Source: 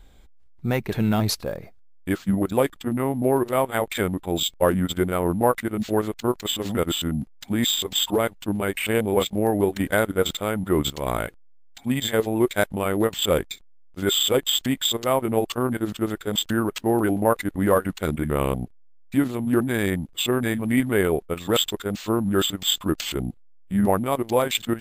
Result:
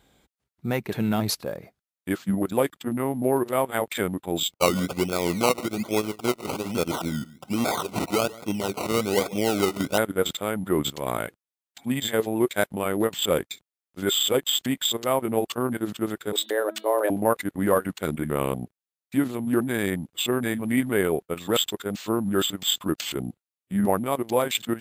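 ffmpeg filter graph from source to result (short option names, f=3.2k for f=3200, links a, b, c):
-filter_complex "[0:a]asettb=1/sr,asplit=3[a][b][c];[a]atrim=end=4.524[d];[b]atrim=start=4.52:end=9.98,asetpts=PTS-STARTPTS,afade=t=in:d=0.004:c=qsin,afade=t=out:st=5.456:d=0.004:c=qsin,aecho=1:1:141|282:0.112|0.0247,atrim=end_sample=240786,acrusher=samples=21:mix=1:aa=0.000001:lfo=1:lforange=12.6:lforate=1.2,asuperstop=centerf=1700:order=12:qfactor=4.7[e];[c]atrim=start=9.976[f];[d][e]acrossfade=d=0.004:c1=hsin:c2=qsin[g];[g][f]acrossfade=d=0.004:c1=qsin:c2=hsin,asettb=1/sr,asplit=3[h][i][j];[h]atrim=end=16.324[k];[i]atrim=start=16.32:end=17.1,asetpts=PTS-STARTPTS,afade=t=in:d=0.004:c=qsin,afade=t=out:st=0.776:d=0.004:c=qsin,afreqshift=210,bandreject=f=324.7:t=h:w=4,bandreject=f=649.4:t=h:w=4,bandreject=f=974.1:t=h:w=4,bandreject=f=1.2988k:t=h:w=4,bandreject=f=1.6235k:t=h:w=4,bandreject=f=1.9482k:t=h:w=4,bandreject=f=2.2729k:t=h:w=4,bandreject=f=2.5976k:t=h:w=4,bandreject=f=2.9223k:t=h:w=4,bandreject=f=3.247k:t=h:w=4,bandreject=f=3.5717k:t=h:w=4,bandreject=f=3.8964k:t=h:w=4,bandreject=f=4.2211k:t=h:w=4,bandreject=f=4.5458k:t=h:w=4[l];[j]atrim=start=17.096[m];[k][l]acrossfade=d=0.004:c1=hsin:c2=qsin[n];[n][m]acrossfade=d=0.004:c1=qsin:c2=hsin,highpass=120,equalizer=f=11k:w=1.3:g=2.5,volume=-2dB"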